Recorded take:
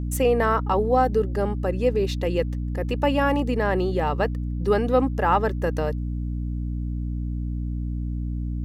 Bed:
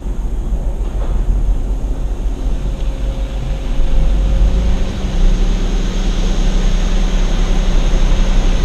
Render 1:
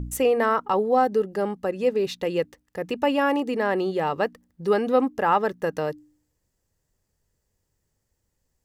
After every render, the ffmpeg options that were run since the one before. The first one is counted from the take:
-af "bandreject=f=60:t=h:w=4,bandreject=f=120:t=h:w=4,bandreject=f=180:t=h:w=4,bandreject=f=240:t=h:w=4,bandreject=f=300:t=h:w=4"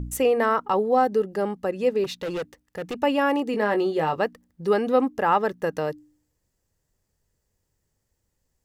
-filter_complex "[0:a]asettb=1/sr,asplit=3[a][b][c];[a]atrim=end=2.044[d];[b]atrim=start=2.04:end=2.99,asetpts=PTS-STARTPTS,afade=t=in:d=0.004:c=qsin,afade=t=out:st=0.946:d=0.004:c=qsin,volume=26dB,asoftclip=hard,volume=-26dB[e];[c]atrim=start=2.986[f];[d][e]acrossfade=d=0.004:c1=hsin:c2=qsin[g];[g][f]acrossfade=d=0.004:c1=qsin:c2=hsin,asettb=1/sr,asplit=3[h][i][j];[h]atrim=end=3.524[k];[i]atrim=start=3.52:end=4.16,asetpts=PTS-STARTPTS,afade=t=in:d=0.004:c=qsin,afade=t=out:st=0.636:d=0.004:c=qsin,asplit=2[l][m];[m]adelay=19,volume=-7dB[n];[l][n]amix=inputs=2:normalize=0,atrim=end_sample=28224[o];[j]atrim=start=4.156[p];[k][o]acrossfade=d=0.004:c1=hsin:c2=qsin[q];[q][p]acrossfade=d=0.004:c1=qsin:c2=hsin"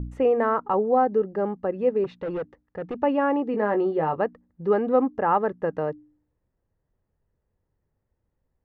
-af "lowpass=1.4k"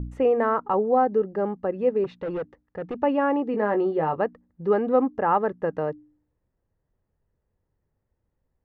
-af anull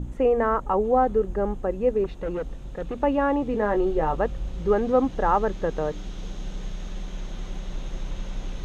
-filter_complex "[1:a]volume=-19dB[a];[0:a][a]amix=inputs=2:normalize=0"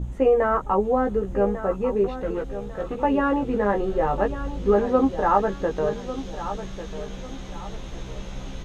-filter_complex "[0:a]asplit=2[a][b];[b]adelay=15,volume=-3.5dB[c];[a][c]amix=inputs=2:normalize=0,aecho=1:1:1147|2294|3441:0.251|0.0854|0.029"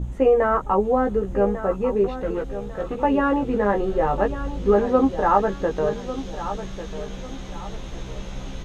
-af "volume=1.5dB"

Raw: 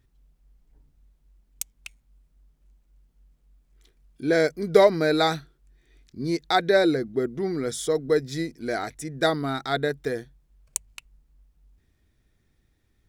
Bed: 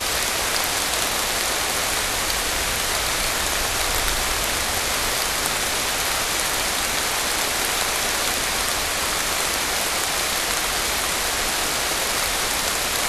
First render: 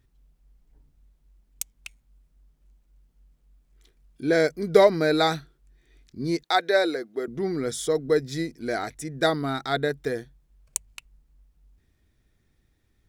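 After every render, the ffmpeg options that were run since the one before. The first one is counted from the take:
-filter_complex "[0:a]asettb=1/sr,asplit=3[a][b][c];[a]atrim=end=6.434[d];[b]atrim=start=6.43:end=7.28,asetpts=PTS-STARTPTS,afade=t=in:d=0.004:c=qsin,afade=t=out:st=0.846:d=0.004:c=qsin,highpass=450[e];[c]atrim=start=7.276[f];[d][e]acrossfade=d=0.004:c1=hsin:c2=qsin[g];[g][f]acrossfade=d=0.004:c1=qsin:c2=hsin"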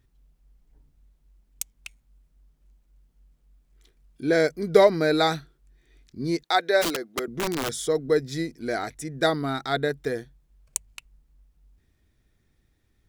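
-filter_complex "[0:a]asplit=3[a][b][c];[a]afade=t=out:st=6.81:d=0.02[d];[b]aeval=exprs='(mod(11.2*val(0)+1,2)-1)/11.2':c=same,afade=t=in:st=6.81:d=0.02,afade=t=out:st=7.81:d=0.02[e];[c]afade=t=in:st=7.81:d=0.02[f];[d][e][f]amix=inputs=3:normalize=0"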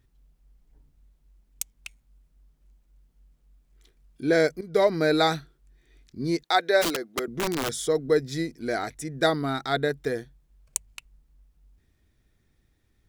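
-filter_complex "[0:a]asplit=2[a][b];[a]atrim=end=4.61,asetpts=PTS-STARTPTS,afade=t=out:st=4.606:d=0.004:c=hsin:silence=0.16788[c];[b]atrim=start=4.61,asetpts=PTS-STARTPTS,afade=t=in:d=0.43:silence=0.16788[d];[c][d]concat=n=2:v=0:a=1"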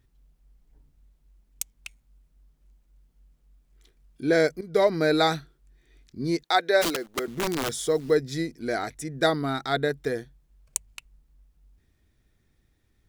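-filter_complex "[0:a]asettb=1/sr,asplit=3[a][b][c];[a]atrim=end=6.834[d];[b]atrim=start=6.83:end=8.15,asetpts=PTS-STARTPTS,afade=t=in:d=0.004:c=qsin,afade=t=out:st=1.316:d=0.004:c=qsin,acrusher=bits=9:dc=4:mix=0:aa=0.000001[e];[c]atrim=start=8.146[f];[d][e]acrossfade=d=0.004:c1=hsin:c2=qsin[g];[g][f]acrossfade=d=0.004:c1=qsin:c2=hsin"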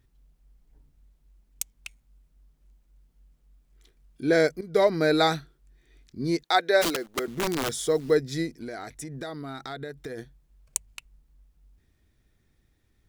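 -filter_complex "[0:a]asplit=3[a][b][c];[a]afade=t=out:st=8.51:d=0.02[d];[b]acompressor=threshold=-33dB:ratio=6:attack=3.2:release=140:knee=1:detection=peak,afade=t=in:st=8.51:d=0.02,afade=t=out:st=10.17:d=0.02[e];[c]afade=t=in:st=10.17:d=0.02[f];[d][e][f]amix=inputs=3:normalize=0"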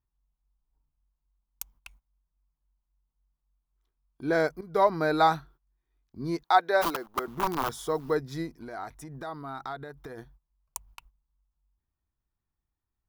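-af "agate=range=-17dB:threshold=-51dB:ratio=16:detection=peak,equalizer=f=125:t=o:w=1:g=-3,equalizer=f=250:t=o:w=1:g=-4,equalizer=f=500:t=o:w=1:g=-7,equalizer=f=1k:t=o:w=1:g=11,equalizer=f=2k:t=o:w=1:g=-8,equalizer=f=4k:t=o:w=1:g=-5,equalizer=f=8k:t=o:w=1:g=-11"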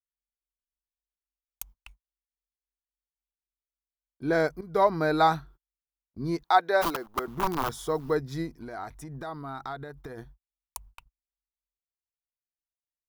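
-af "lowshelf=f=150:g=5.5,agate=range=-32dB:threshold=-49dB:ratio=16:detection=peak"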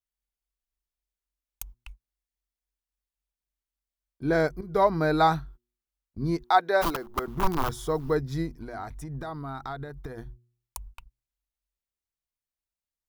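-af "lowshelf=f=120:g=11.5,bandreject=f=120.1:t=h:w=4,bandreject=f=240.2:t=h:w=4,bandreject=f=360.3:t=h:w=4"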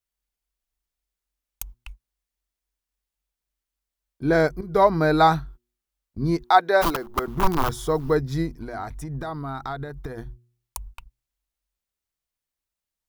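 -af "volume=4.5dB"

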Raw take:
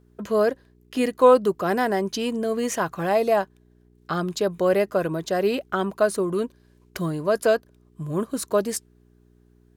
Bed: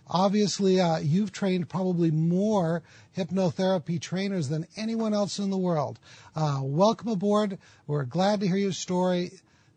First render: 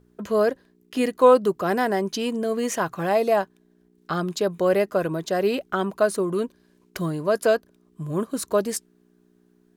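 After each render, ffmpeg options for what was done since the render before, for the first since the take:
-af "bandreject=f=60:t=h:w=4,bandreject=f=120:t=h:w=4"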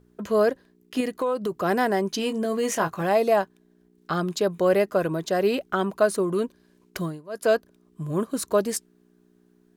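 -filter_complex "[0:a]asettb=1/sr,asplit=3[a][b][c];[a]atrim=end=1.004[d];[b]atrim=start=1:end=1.52,asetpts=PTS-STARTPTS,afade=t=in:d=0.004:c=qsin,afade=t=out:st=0.516:d=0.004:c=qsin,acompressor=threshold=-22dB:ratio=6:attack=3.2:release=140:knee=1:detection=peak[e];[c]atrim=start=1.516[f];[d][e]acrossfade=d=0.004:c1=hsin:c2=qsin[g];[g][f]acrossfade=d=0.004:c1=qsin:c2=hsin,asettb=1/sr,asplit=3[h][i][j];[h]atrim=end=2.164[k];[i]atrim=start=2.16:end=3.02,asetpts=PTS-STARTPTS,afade=t=in:d=0.004:c=qsin,afade=t=out:st=0.856:d=0.004:c=qsin,asplit=2[l][m];[m]adelay=19,volume=-8dB[n];[l][n]amix=inputs=2:normalize=0,atrim=end_sample=37926[o];[j]atrim=start=3.016[p];[k][o]acrossfade=d=0.004:c1=hsin:c2=qsin[q];[q][p]acrossfade=d=0.004:c1=qsin:c2=hsin,asplit=3[r][s][t];[r]atrim=end=7.22,asetpts=PTS-STARTPTS,afade=t=out:st=6.98:d=0.24:silence=0.112202[u];[s]atrim=start=7.22:end=7.29,asetpts=PTS-STARTPTS,volume=-19dB[v];[t]atrim=start=7.29,asetpts=PTS-STARTPTS,afade=t=in:d=0.24:silence=0.112202[w];[u][v][w]concat=n=3:v=0:a=1"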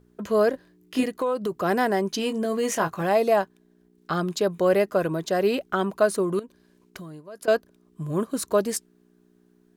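-filter_complex "[0:a]asettb=1/sr,asplit=3[a][b][c];[a]atrim=end=0.514[d];[b]atrim=start=0.51:end=1.04,asetpts=PTS-STARTPTS,afade=t=in:d=0.004:c=qsin,afade=t=out:st=0.526:d=0.004:c=qsin,asplit=2[e][f];[f]adelay=23,volume=-2dB[g];[e][g]amix=inputs=2:normalize=0,atrim=end_sample=23373[h];[c]atrim=start=1.036[i];[d][h]acrossfade=d=0.004:c1=hsin:c2=qsin[j];[j][i]acrossfade=d=0.004:c1=qsin:c2=hsin,asettb=1/sr,asplit=3[k][l][m];[k]atrim=end=6.394[n];[l]atrim=start=6.39:end=7.48,asetpts=PTS-STARTPTS,afade=t=in:d=0.004:c=qsin,afade=t=out:st=1.086:d=0.004:c=qsin,acompressor=threshold=-36dB:ratio=8:attack=3.2:release=140:knee=1:detection=peak[o];[m]atrim=start=7.476[p];[n][o]acrossfade=d=0.004:c1=hsin:c2=qsin[q];[q][p]acrossfade=d=0.004:c1=qsin:c2=hsin"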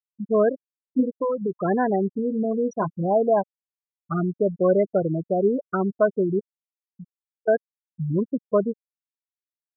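-af "lowshelf=f=210:g=7.5,afftfilt=real='re*gte(hypot(re,im),0.224)':imag='im*gte(hypot(re,im),0.224)':win_size=1024:overlap=0.75"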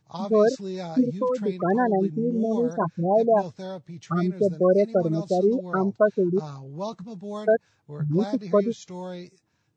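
-filter_complex "[1:a]volume=-10.5dB[a];[0:a][a]amix=inputs=2:normalize=0"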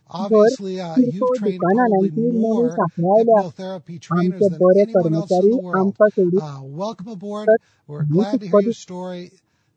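-af "volume=6dB"

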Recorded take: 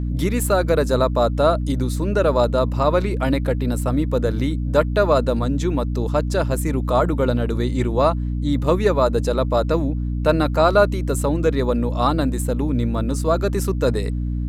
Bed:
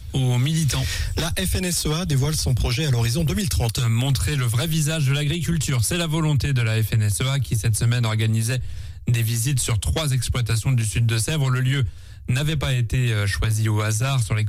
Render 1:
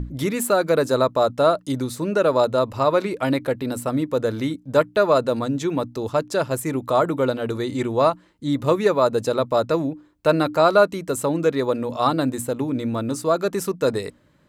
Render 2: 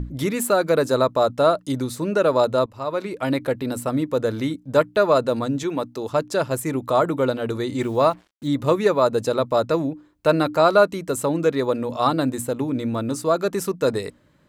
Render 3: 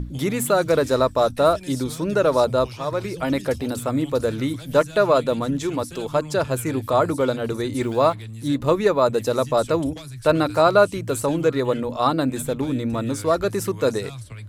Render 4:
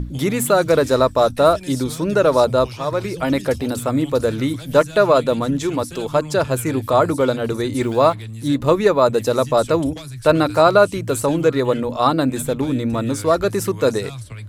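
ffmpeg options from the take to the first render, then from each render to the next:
-af "bandreject=f=60:t=h:w=6,bandreject=f=120:t=h:w=6,bandreject=f=180:t=h:w=6,bandreject=f=240:t=h:w=6,bandreject=f=300:t=h:w=6"
-filter_complex "[0:a]asettb=1/sr,asplit=3[a][b][c];[a]atrim=end=5.634[d];[b]atrim=start=5.63:end=6.11,asetpts=PTS-STARTPTS,afade=t=in:d=0.004:c=qsin,afade=t=out:st=0.476:d=0.004:c=qsin,highpass=f=250:p=1[e];[c]atrim=start=6.106[f];[d][e]acrossfade=d=0.004:c1=hsin:c2=qsin[g];[g][f]acrossfade=d=0.004:c1=qsin:c2=hsin,asettb=1/sr,asplit=3[h][i][j];[h]atrim=end=7.804[k];[i]atrim=start=7.8:end=8.48,asetpts=PTS-STARTPTS,afade=t=in:d=0.004:c=qsin,afade=t=out:st=0.676:d=0.004:c=qsin,acrusher=bits=7:mix=0:aa=0.5[l];[j]atrim=start=8.476[m];[k][l]acrossfade=d=0.004:c1=hsin:c2=qsin[n];[n][m]acrossfade=d=0.004:c1=qsin:c2=hsin,asplit=2[o][p];[o]atrim=end=2.66,asetpts=PTS-STARTPTS,afade=t=out:st=2.656:d=0.004:c=hsin:silence=0.16788[q];[p]atrim=start=2.66,asetpts=PTS-STARTPTS,afade=t=in:d=0.77:silence=0.16788[r];[q][r]concat=n=2:v=0:a=1"
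-filter_complex "[1:a]volume=-15.5dB[a];[0:a][a]amix=inputs=2:normalize=0"
-af "volume=3.5dB,alimiter=limit=-2dB:level=0:latency=1"

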